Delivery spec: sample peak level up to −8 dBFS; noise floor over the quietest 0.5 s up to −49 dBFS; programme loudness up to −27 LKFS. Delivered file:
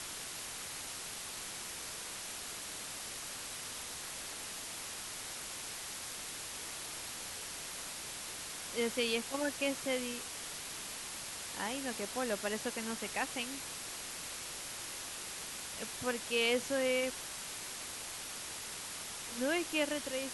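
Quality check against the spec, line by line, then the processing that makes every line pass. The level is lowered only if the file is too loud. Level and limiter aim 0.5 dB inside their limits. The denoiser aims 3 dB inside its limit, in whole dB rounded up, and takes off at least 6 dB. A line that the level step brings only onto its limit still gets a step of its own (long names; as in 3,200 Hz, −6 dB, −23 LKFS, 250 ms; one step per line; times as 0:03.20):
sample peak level −20.0 dBFS: in spec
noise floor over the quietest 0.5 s −44 dBFS: out of spec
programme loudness −38.0 LKFS: in spec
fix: broadband denoise 8 dB, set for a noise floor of −44 dBFS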